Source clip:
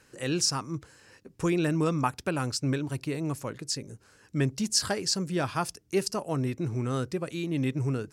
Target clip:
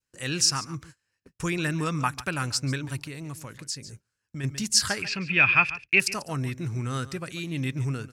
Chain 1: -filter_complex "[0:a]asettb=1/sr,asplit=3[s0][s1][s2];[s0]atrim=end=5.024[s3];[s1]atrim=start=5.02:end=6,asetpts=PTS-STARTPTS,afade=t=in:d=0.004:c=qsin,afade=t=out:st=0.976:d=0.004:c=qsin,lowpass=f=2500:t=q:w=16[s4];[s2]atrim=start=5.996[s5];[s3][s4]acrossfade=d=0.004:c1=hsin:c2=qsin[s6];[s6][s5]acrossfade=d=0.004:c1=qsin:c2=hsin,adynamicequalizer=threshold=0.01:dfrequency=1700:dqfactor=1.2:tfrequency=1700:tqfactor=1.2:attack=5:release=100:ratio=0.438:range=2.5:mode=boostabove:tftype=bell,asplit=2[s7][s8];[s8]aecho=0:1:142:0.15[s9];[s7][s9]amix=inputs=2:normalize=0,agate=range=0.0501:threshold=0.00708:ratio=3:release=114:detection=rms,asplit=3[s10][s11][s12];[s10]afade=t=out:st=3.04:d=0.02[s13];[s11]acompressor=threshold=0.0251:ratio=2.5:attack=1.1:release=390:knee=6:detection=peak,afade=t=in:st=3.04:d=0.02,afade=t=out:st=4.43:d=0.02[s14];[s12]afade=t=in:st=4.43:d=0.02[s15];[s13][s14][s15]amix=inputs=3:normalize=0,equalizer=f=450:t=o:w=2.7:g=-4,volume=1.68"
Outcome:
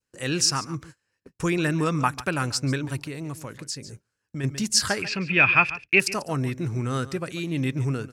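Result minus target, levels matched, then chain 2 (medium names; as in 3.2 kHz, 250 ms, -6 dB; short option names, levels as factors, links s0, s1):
500 Hz band +4.5 dB
-filter_complex "[0:a]asettb=1/sr,asplit=3[s0][s1][s2];[s0]atrim=end=5.024[s3];[s1]atrim=start=5.02:end=6,asetpts=PTS-STARTPTS,afade=t=in:d=0.004:c=qsin,afade=t=out:st=0.976:d=0.004:c=qsin,lowpass=f=2500:t=q:w=16[s4];[s2]atrim=start=5.996[s5];[s3][s4]acrossfade=d=0.004:c1=hsin:c2=qsin[s6];[s6][s5]acrossfade=d=0.004:c1=qsin:c2=hsin,adynamicequalizer=threshold=0.01:dfrequency=1700:dqfactor=1.2:tfrequency=1700:tqfactor=1.2:attack=5:release=100:ratio=0.438:range=2.5:mode=boostabove:tftype=bell,asplit=2[s7][s8];[s8]aecho=0:1:142:0.15[s9];[s7][s9]amix=inputs=2:normalize=0,agate=range=0.0501:threshold=0.00708:ratio=3:release=114:detection=rms,asplit=3[s10][s11][s12];[s10]afade=t=out:st=3.04:d=0.02[s13];[s11]acompressor=threshold=0.0251:ratio=2.5:attack=1.1:release=390:knee=6:detection=peak,afade=t=in:st=3.04:d=0.02,afade=t=out:st=4.43:d=0.02[s14];[s12]afade=t=in:st=4.43:d=0.02[s15];[s13][s14][s15]amix=inputs=3:normalize=0,equalizer=f=450:t=o:w=2.7:g=-10.5,volume=1.68"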